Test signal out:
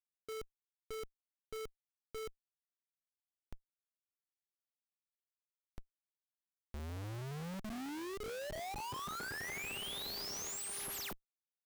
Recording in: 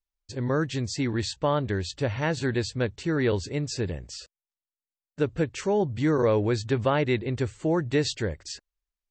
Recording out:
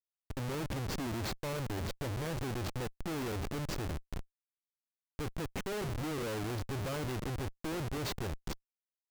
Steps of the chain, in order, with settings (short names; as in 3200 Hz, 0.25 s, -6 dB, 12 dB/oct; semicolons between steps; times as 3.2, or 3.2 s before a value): buzz 400 Hz, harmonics 33, -52 dBFS -7 dB/oct; de-hum 201.1 Hz, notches 33; Schmitt trigger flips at -30 dBFS; gain -8.5 dB